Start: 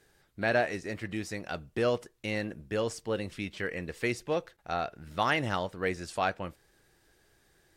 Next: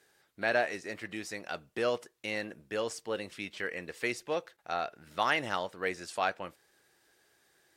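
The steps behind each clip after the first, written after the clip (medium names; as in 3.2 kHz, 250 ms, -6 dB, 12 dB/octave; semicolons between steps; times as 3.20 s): high-pass 460 Hz 6 dB/octave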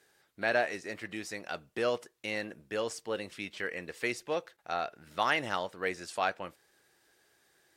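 no audible change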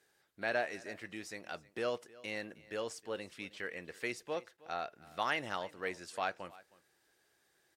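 delay 314 ms -21 dB; trim -5.5 dB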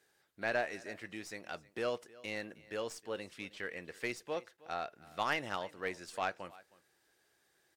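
tracing distortion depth 0.036 ms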